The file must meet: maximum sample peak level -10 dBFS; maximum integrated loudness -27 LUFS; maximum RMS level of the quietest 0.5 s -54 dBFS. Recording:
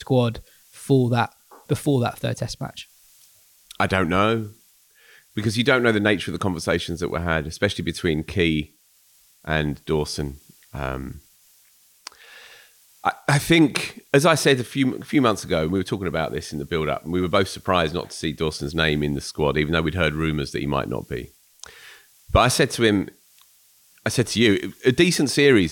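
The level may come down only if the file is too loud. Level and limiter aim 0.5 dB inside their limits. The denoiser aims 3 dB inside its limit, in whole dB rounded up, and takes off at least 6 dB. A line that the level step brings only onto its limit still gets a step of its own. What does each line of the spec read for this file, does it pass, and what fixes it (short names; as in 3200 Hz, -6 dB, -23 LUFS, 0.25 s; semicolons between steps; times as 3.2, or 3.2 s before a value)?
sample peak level -5.0 dBFS: fail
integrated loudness -22.0 LUFS: fail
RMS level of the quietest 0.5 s -58 dBFS: OK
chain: gain -5.5 dB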